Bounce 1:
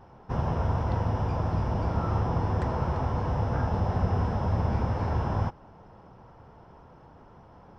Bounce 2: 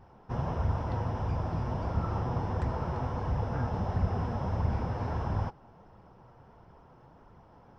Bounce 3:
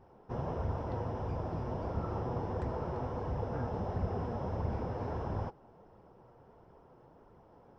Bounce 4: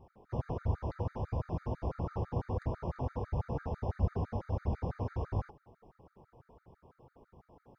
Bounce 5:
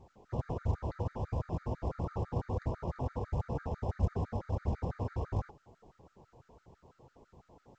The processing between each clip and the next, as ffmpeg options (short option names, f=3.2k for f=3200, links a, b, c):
-af "flanger=delay=0.4:depth=8.1:regen=60:speed=1.5:shape=sinusoidal"
-af "equalizer=f=430:t=o:w=1.5:g=8.5,volume=-7dB"
-af "equalizer=f=60:t=o:w=2.5:g=6.5,afftfilt=real='re*gt(sin(2*PI*6*pts/sr)*(1-2*mod(floor(b*sr/1024/1200),2)),0)':imag='im*gt(sin(2*PI*6*pts/sr)*(1-2*mod(floor(b*sr/1024/1200),2)),0)':win_size=1024:overlap=0.75"
-ar 16000 -c:a pcm_mulaw